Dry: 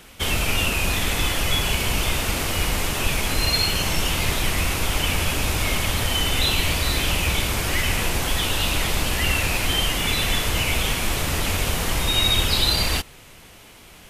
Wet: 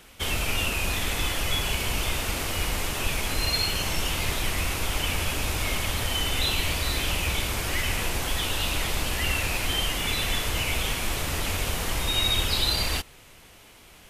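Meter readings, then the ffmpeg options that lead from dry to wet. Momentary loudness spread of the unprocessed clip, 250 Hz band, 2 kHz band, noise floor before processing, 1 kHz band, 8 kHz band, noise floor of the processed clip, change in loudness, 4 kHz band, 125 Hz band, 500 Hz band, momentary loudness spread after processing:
4 LU, -6.0 dB, -4.5 dB, -46 dBFS, -4.5 dB, -4.5 dB, -51 dBFS, -4.5 dB, -4.5 dB, -5.5 dB, -5.0 dB, 4 LU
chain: -af "equalizer=f=170:t=o:w=1.3:g=-2.5,volume=0.596"

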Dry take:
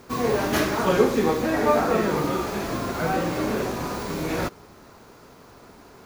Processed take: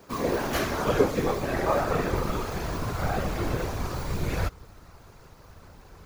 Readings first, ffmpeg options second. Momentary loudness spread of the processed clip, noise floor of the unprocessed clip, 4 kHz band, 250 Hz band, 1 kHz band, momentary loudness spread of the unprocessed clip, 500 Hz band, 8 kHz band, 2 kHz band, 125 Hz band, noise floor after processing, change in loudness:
8 LU, -49 dBFS, -4.0 dB, -6.0 dB, -4.5 dB, 8 LU, -4.5 dB, -4.0 dB, -4.0 dB, +1.0 dB, -52 dBFS, -4.0 dB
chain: -af "afftfilt=real='hypot(re,im)*cos(2*PI*random(0))':imag='hypot(re,im)*sin(2*PI*random(1))':win_size=512:overlap=0.75,asubboost=boost=7.5:cutoff=96,volume=1.26"

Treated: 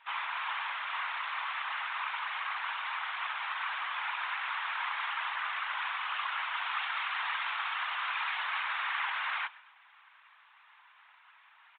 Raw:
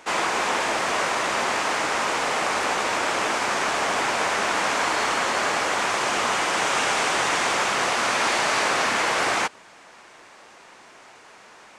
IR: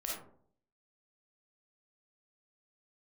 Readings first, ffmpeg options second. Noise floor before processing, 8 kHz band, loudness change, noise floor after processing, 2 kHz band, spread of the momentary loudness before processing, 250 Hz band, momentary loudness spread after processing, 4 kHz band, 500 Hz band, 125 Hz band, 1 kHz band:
-49 dBFS, under -40 dB, -11.5 dB, -61 dBFS, -9.5 dB, 2 LU, under -40 dB, 3 LU, -12.0 dB, -31.5 dB, under -40 dB, -11.5 dB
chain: -filter_complex "[0:a]asuperpass=centerf=2300:order=12:qfactor=0.5,aecho=1:1:130|260|390:0.0794|0.0334|0.014,aresample=8000,aresample=44100,asplit=2[s0][s1];[1:a]atrim=start_sample=2205[s2];[s1][s2]afir=irnorm=-1:irlink=0,volume=0.0668[s3];[s0][s3]amix=inputs=2:normalize=0,afftfilt=real='hypot(re,im)*cos(2*PI*random(0))':imag='hypot(re,im)*sin(2*PI*random(1))':win_size=512:overlap=0.75,volume=0.631"

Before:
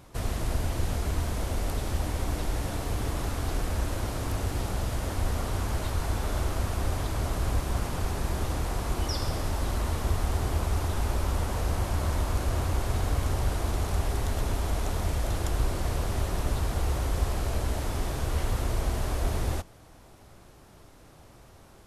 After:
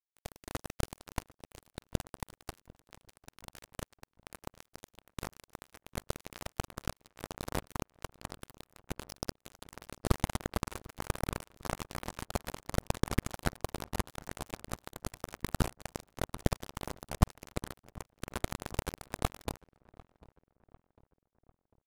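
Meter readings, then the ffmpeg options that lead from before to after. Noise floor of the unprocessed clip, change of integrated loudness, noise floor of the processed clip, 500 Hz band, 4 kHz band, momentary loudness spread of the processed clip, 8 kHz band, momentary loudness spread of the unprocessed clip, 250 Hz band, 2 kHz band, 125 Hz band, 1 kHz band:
-53 dBFS, -9.0 dB, under -85 dBFS, -7.0 dB, -7.0 dB, 18 LU, -7.0 dB, 3 LU, -5.0 dB, -6.0 dB, -11.5 dB, -7.0 dB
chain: -filter_complex "[0:a]acrusher=bits=2:mix=0:aa=0.5,asplit=2[s0][s1];[s1]adelay=748,lowpass=f=1700:p=1,volume=0.0794,asplit=2[s2][s3];[s3]adelay=748,lowpass=f=1700:p=1,volume=0.51,asplit=2[s4][s5];[s5]adelay=748,lowpass=f=1700:p=1,volume=0.51,asplit=2[s6][s7];[s7]adelay=748,lowpass=f=1700:p=1,volume=0.51[s8];[s0][s2][s4][s6][s8]amix=inputs=5:normalize=0,volume=1.68"

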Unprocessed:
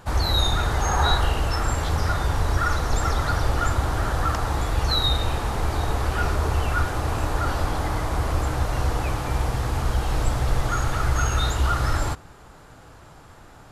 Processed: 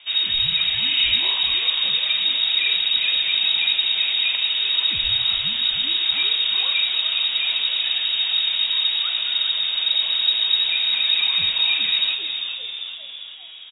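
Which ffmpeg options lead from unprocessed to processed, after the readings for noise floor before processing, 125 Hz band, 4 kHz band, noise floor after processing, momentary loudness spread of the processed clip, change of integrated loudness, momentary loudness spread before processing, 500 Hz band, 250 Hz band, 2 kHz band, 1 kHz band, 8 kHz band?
-47 dBFS, under -20 dB, +15.5 dB, -36 dBFS, 4 LU, +6.5 dB, 5 LU, under -15 dB, under -15 dB, +4.5 dB, -15.0 dB, under -40 dB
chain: -filter_complex "[0:a]asplit=8[s0][s1][s2][s3][s4][s5][s6][s7];[s1]adelay=400,afreqshift=-120,volume=0.447[s8];[s2]adelay=800,afreqshift=-240,volume=0.254[s9];[s3]adelay=1200,afreqshift=-360,volume=0.145[s10];[s4]adelay=1600,afreqshift=-480,volume=0.0832[s11];[s5]adelay=2000,afreqshift=-600,volume=0.0473[s12];[s6]adelay=2400,afreqshift=-720,volume=0.0269[s13];[s7]adelay=2800,afreqshift=-840,volume=0.0153[s14];[s0][s8][s9][s10][s11][s12][s13][s14]amix=inputs=8:normalize=0,lowpass=f=3200:t=q:w=0.5098,lowpass=f=3200:t=q:w=0.6013,lowpass=f=3200:t=q:w=0.9,lowpass=f=3200:t=q:w=2.563,afreqshift=-3800"

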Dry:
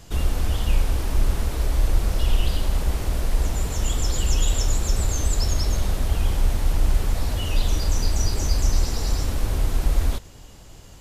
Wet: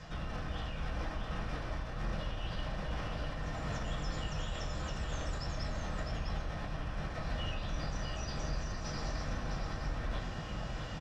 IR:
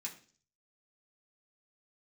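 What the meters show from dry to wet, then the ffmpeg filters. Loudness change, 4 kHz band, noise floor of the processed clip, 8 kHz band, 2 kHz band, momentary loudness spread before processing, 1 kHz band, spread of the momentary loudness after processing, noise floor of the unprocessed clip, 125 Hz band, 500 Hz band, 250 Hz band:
-14.5 dB, -12.0 dB, -41 dBFS, -21.0 dB, -5.5 dB, 3 LU, -6.5 dB, 2 LU, -44 dBFS, -14.0 dB, -9.0 dB, -9.0 dB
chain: -filter_complex "[0:a]lowpass=2600,lowshelf=f=400:g=-4,areverse,acompressor=threshold=0.0251:ratio=6,areverse,alimiter=level_in=3.98:limit=0.0631:level=0:latency=1:release=27,volume=0.251,aecho=1:1:654:0.562[s0];[1:a]atrim=start_sample=2205,asetrate=31752,aresample=44100[s1];[s0][s1]afir=irnorm=-1:irlink=0,volume=2.82"

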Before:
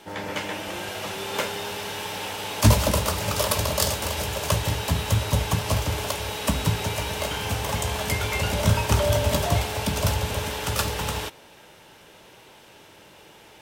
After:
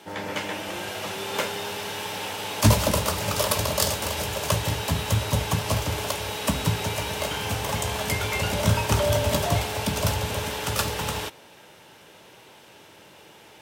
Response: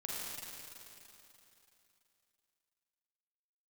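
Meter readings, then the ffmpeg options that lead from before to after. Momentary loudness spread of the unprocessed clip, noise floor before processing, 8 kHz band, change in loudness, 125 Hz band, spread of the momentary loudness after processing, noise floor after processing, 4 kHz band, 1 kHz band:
9 LU, -50 dBFS, 0.0 dB, -0.5 dB, -1.5 dB, 9 LU, -50 dBFS, 0.0 dB, 0.0 dB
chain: -af "highpass=78"

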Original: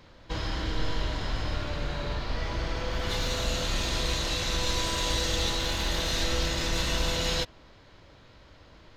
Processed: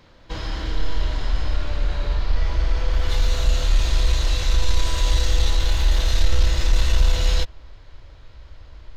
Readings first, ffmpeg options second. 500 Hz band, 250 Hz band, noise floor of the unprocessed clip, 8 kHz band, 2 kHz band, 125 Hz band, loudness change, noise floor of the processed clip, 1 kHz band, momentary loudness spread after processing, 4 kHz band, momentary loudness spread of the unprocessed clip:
-0.5 dB, -2.0 dB, -54 dBFS, +0.5 dB, +0.5 dB, +9.5 dB, +6.0 dB, -46 dBFS, +0.5 dB, 7 LU, +0.5 dB, 6 LU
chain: -af "asubboost=boost=9:cutoff=61,acontrast=47,volume=0.596"

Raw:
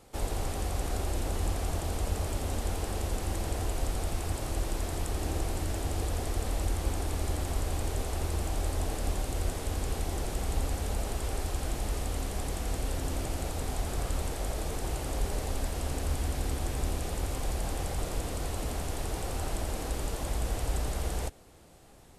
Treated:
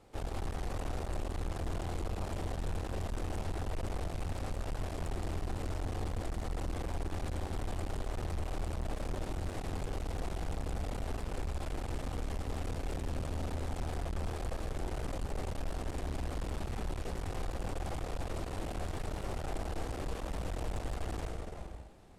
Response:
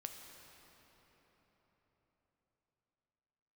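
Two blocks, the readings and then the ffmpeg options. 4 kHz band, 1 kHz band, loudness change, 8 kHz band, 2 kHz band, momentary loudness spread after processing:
-8.0 dB, -4.0 dB, -5.5 dB, -12.5 dB, -5.0 dB, 1 LU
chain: -filter_complex "[0:a]aemphasis=mode=reproduction:type=50kf[s0];[1:a]atrim=start_sample=2205,afade=t=out:st=0.4:d=0.01,atrim=end_sample=18081,asetrate=26019,aresample=44100[s1];[s0][s1]afir=irnorm=-1:irlink=0,aeval=exprs='(tanh(56.2*val(0)+0.65)-tanh(0.65))/56.2':c=same,volume=1.26"

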